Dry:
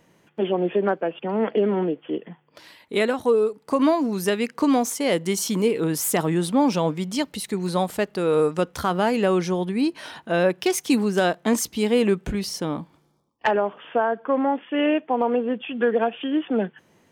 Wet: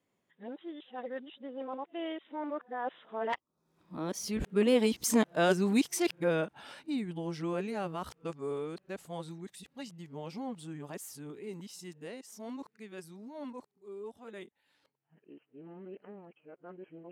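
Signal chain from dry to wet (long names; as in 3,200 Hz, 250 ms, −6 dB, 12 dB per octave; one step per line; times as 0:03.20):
played backwards from end to start
source passing by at 0:05.11, 31 m/s, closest 27 metres
level −5 dB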